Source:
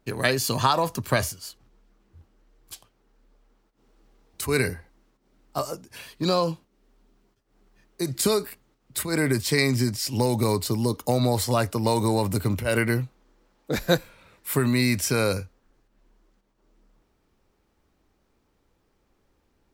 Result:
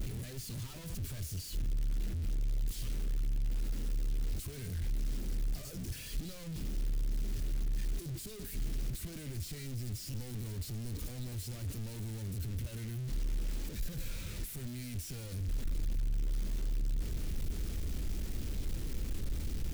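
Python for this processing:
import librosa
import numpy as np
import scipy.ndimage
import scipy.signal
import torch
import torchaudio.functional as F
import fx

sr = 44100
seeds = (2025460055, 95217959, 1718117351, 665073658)

y = np.sign(x) * np.sqrt(np.mean(np.square(x)))
y = fx.tone_stack(y, sr, knobs='10-0-1')
y = y * librosa.db_to_amplitude(3.5)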